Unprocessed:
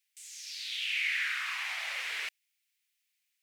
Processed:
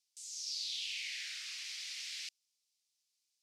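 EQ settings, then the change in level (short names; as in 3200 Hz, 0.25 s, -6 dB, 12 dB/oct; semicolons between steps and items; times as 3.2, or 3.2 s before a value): ladder band-pass 6000 Hz, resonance 40%; +11.0 dB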